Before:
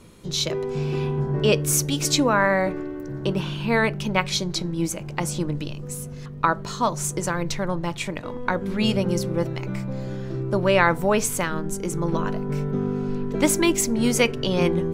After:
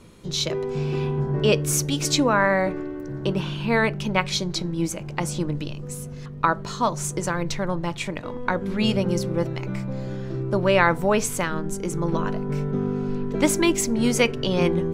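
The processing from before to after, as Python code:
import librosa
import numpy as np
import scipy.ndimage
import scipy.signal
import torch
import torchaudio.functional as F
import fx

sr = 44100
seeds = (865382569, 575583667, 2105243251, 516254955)

y = fx.high_shelf(x, sr, hz=11000.0, db=-7.0)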